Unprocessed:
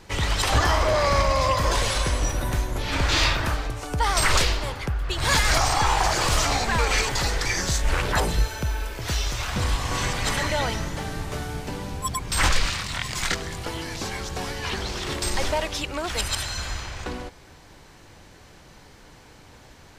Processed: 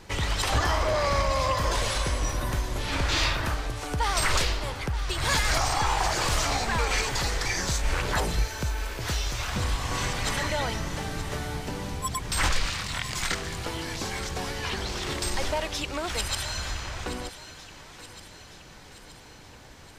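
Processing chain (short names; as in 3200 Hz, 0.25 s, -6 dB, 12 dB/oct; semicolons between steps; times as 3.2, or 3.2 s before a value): in parallel at -0.5 dB: compressor, threshold -30 dBFS, peak gain reduction 14.5 dB; on the sum: thinning echo 0.924 s, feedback 57%, high-pass 850 Hz, level -12.5 dB; gain -6 dB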